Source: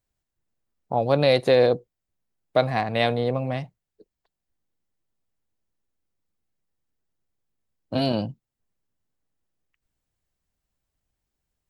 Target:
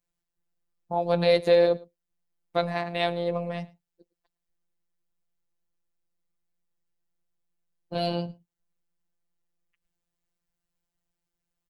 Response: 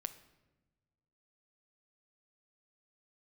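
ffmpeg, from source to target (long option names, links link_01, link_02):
-af "aecho=1:1:110:0.0668,afftfilt=real='hypot(re,im)*cos(PI*b)':imag='0':win_size=1024:overlap=0.75"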